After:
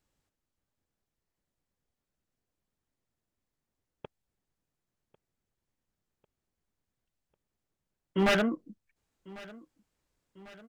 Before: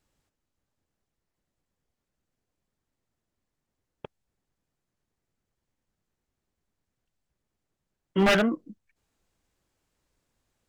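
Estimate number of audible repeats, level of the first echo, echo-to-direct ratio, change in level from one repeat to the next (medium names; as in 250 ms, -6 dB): 3, -21.0 dB, -19.5 dB, -5.0 dB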